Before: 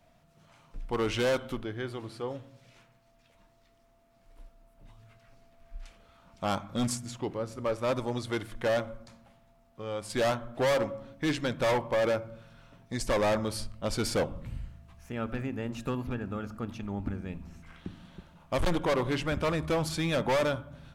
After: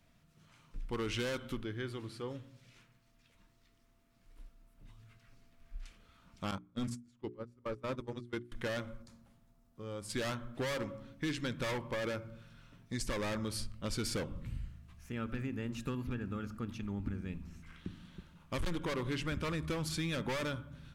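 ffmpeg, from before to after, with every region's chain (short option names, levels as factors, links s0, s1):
-filter_complex "[0:a]asettb=1/sr,asplit=3[s0][s1][s2];[s0]atrim=end=6.514[s3];[s1]atrim=start=6.51:end=8.52,asetpts=PTS-STARTPTS,afade=t=in:d=0.004:c=qsin,afade=t=out:st=2.006:d=0.004:c=qsin,agate=range=0.0794:threshold=0.0251:ratio=16:release=100:detection=peak,highshelf=f=2200:g=-8.5,bandreject=f=60:t=h:w=6,bandreject=f=120:t=h:w=6,bandreject=f=180:t=h:w=6,bandreject=f=240:t=h:w=6,bandreject=f=300:t=h:w=6,bandreject=f=360:t=h:w=6,bandreject=f=420:t=h:w=6[s4];[s2]atrim=start=8.516[s5];[s3][s4]acrossfade=d=0.004:c1=hsin:c2=qsin[s6];[s6][s5]acrossfade=d=0.004:c1=qsin:c2=hsin,asettb=1/sr,asplit=3[s7][s8][s9];[s7]atrim=end=9.024[s10];[s8]atrim=start=9.02:end=10.09,asetpts=PTS-STARTPTS,afade=t=in:d=0.004:c=qsin,afade=t=out:st=1.066:d=0.004:c=qsin,equalizer=f=2500:w=0.72:g=-8,bandreject=f=60:t=h:w=6,bandreject=f=120:t=h:w=6,bandreject=f=180:t=h:w=6[s11];[s9]atrim=start=10.086[s12];[s10][s11]acrossfade=d=0.004:c1=hsin:c2=qsin[s13];[s13][s12]acrossfade=d=0.004:c1=qsin:c2=hsin,equalizer=f=700:t=o:w=0.9:g=-11.5,acompressor=threshold=0.0316:ratio=6,volume=0.794"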